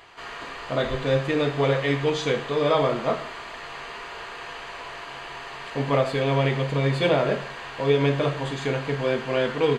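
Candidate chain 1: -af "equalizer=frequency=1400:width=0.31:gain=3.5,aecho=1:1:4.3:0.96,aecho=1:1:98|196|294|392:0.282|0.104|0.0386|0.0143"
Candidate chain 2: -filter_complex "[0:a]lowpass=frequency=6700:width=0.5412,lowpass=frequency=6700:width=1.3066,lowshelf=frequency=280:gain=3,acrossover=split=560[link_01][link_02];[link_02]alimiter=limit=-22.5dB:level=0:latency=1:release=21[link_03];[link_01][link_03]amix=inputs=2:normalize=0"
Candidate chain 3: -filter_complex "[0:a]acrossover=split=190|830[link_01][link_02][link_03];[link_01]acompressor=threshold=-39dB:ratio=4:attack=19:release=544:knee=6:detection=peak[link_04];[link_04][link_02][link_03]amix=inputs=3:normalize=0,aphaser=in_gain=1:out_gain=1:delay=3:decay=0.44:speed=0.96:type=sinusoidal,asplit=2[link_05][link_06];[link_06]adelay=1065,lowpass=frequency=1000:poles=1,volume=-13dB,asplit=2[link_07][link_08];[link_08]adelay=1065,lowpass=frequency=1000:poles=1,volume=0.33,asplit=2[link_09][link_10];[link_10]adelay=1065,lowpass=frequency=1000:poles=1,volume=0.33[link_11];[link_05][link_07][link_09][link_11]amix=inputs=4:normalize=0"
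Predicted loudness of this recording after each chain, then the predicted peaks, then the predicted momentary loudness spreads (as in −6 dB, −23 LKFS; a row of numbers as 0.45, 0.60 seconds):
−20.0, −24.0, −24.0 LKFS; −3.5, −8.5, −7.0 dBFS; 13, 14, 14 LU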